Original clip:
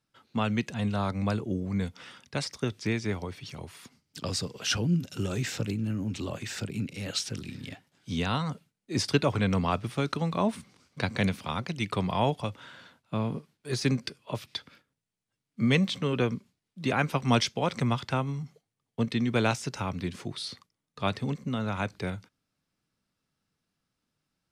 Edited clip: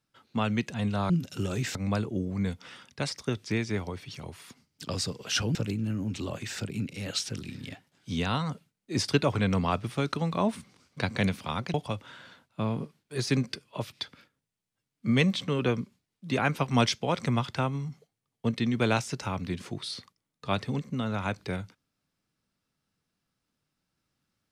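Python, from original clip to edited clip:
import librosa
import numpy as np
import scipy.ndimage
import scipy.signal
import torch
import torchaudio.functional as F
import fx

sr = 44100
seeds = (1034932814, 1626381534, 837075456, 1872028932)

y = fx.edit(x, sr, fx.move(start_s=4.9, length_s=0.65, to_s=1.1),
    fx.cut(start_s=11.74, length_s=0.54), tone=tone)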